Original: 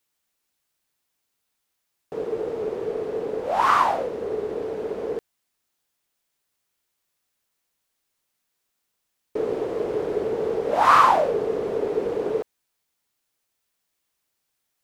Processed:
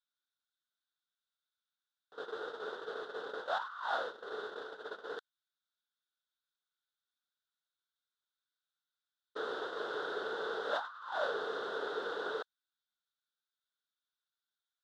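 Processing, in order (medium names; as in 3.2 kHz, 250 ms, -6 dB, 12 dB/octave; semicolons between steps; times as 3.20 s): gate -28 dBFS, range -14 dB; two resonant band-passes 2.3 kHz, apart 1.3 oct; compressor with a negative ratio -41 dBFS, ratio -1; trim +3 dB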